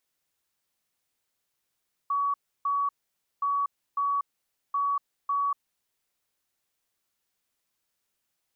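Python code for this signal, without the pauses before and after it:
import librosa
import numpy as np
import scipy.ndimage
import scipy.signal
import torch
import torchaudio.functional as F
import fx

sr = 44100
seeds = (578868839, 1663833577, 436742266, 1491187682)

y = fx.beep_pattern(sr, wave='sine', hz=1130.0, on_s=0.24, off_s=0.31, beeps=2, pause_s=0.53, groups=3, level_db=-23.5)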